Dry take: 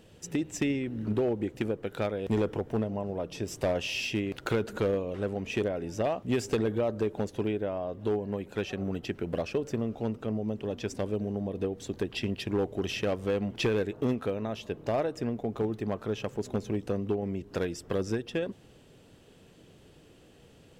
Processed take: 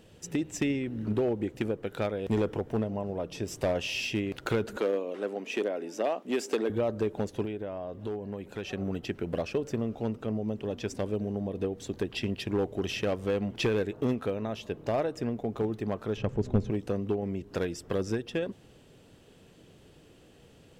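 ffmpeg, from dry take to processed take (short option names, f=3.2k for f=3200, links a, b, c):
-filter_complex "[0:a]asettb=1/sr,asplit=3[a][b][c];[a]atrim=end=4.774[d];[b]atrim=start=4.77:end=6.7,asetpts=PTS-STARTPTS,afade=t=in:d=0.004:c=qsin,afade=t=out:st=1.926:d=0.004:c=qsin,highpass=f=250:w=0.5412,highpass=f=250:w=1.3066[e];[c]atrim=start=6.696[f];[d][e]acrossfade=d=0.004:c1=hsin:c2=qsin[g];[g][f]acrossfade=d=0.004:c1=qsin:c2=hsin,asettb=1/sr,asplit=3[h][i][j];[h]atrim=end=7.454[k];[i]atrim=start=7.45:end=8.65,asetpts=PTS-STARTPTS,afade=t=in:d=0.004:c=qsin,afade=t=out:st=1.196:d=0.004:c=qsin,acompressor=threshold=-35dB:ratio=2:attack=3.2:release=140:knee=1:detection=peak[l];[j]atrim=start=8.646[m];[k][l]acrossfade=d=0.004:c1=hsin:c2=qsin[n];[n][m]acrossfade=d=0.004:c1=qsin:c2=hsin,asplit=3[o][p][q];[o]afade=t=out:st=16.16:d=0.02[r];[p]aemphasis=mode=reproduction:type=bsi,afade=t=in:st=16.16:d=0.02,afade=t=out:st=16.69:d=0.02[s];[q]afade=t=in:st=16.69:d=0.02[t];[r][s][t]amix=inputs=3:normalize=0"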